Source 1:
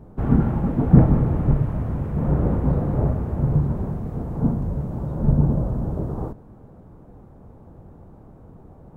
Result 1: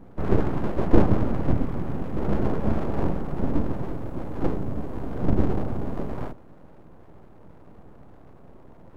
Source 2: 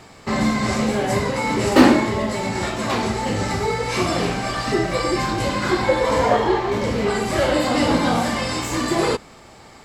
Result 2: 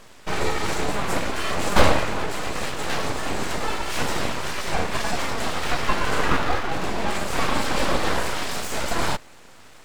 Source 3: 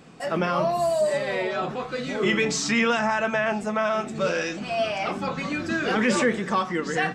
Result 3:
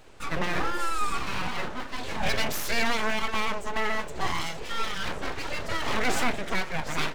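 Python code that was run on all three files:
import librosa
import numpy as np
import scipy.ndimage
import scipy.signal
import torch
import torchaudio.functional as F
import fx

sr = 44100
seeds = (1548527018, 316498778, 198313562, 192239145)

y = fx.notch(x, sr, hz=5100.0, q=12.0)
y = np.abs(y)
y = y * 10.0 ** (-1.0 / 20.0)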